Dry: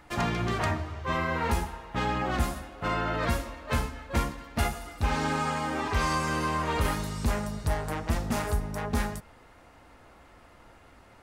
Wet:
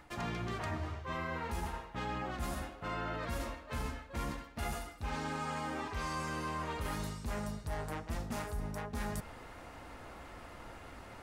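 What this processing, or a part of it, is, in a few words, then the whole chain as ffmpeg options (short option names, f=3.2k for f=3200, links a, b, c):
compression on the reversed sound: -af "areverse,acompressor=threshold=-41dB:ratio=6,areverse,volume=4.5dB"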